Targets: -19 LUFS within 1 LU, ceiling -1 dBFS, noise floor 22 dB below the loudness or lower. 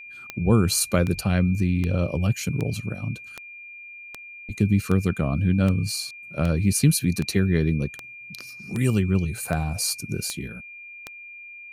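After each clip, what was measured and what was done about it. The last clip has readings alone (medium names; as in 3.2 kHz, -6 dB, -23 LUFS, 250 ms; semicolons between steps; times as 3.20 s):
clicks found 15; steady tone 2.4 kHz; tone level -39 dBFS; loudness -23.5 LUFS; peak level -7.5 dBFS; loudness target -19.0 LUFS
-> de-click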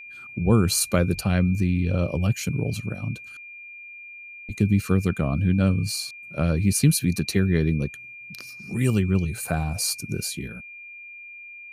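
clicks found 0; steady tone 2.4 kHz; tone level -39 dBFS
-> band-stop 2.4 kHz, Q 30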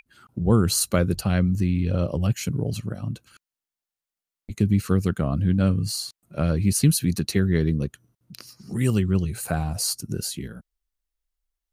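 steady tone not found; loudness -24.0 LUFS; peak level -7.5 dBFS; loudness target -19.0 LUFS
-> trim +5 dB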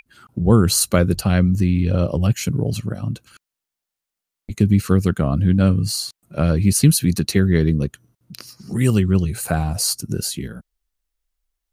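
loudness -19.0 LUFS; peak level -2.5 dBFS; noise floor -85 dBFS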